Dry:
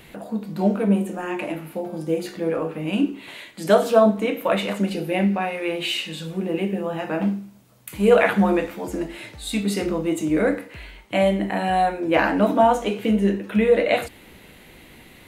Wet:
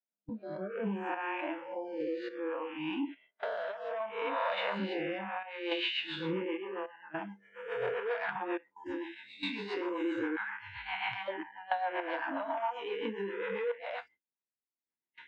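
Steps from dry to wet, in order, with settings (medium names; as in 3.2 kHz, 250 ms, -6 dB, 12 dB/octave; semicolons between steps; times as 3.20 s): reverse spectral sustain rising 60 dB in 1.19 s; saturation -11 dBFS, distortion -14 dB; 10.36–11.28 s: elliptic band-stop 200–810 Hz, stop band 40 dB; random-step tremolo 3.5 Hz, depth 95%; cabinet simulation 120–3700 Hz, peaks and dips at 160 Hz -8 dB, 950 Hz +10 dB, 1.6 kHz +7 dB; compression 10:1, threshold -28 dBFS, peak gain reduction 19.5 dB; rotary cabinet horn 0.6 Hz, later 7.5 Hz, at 4.89 s; gate with hold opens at -41 dBFS; spectral noise reduction 24 dB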